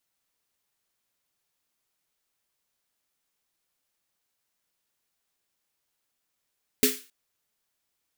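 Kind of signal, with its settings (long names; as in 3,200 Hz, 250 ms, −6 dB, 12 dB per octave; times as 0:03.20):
synth snare length 0.27 s, tones 260 Hz, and 420 Hz, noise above 1,600 Hz, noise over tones 0.5 dB, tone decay 0.24 s, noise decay 0.36 s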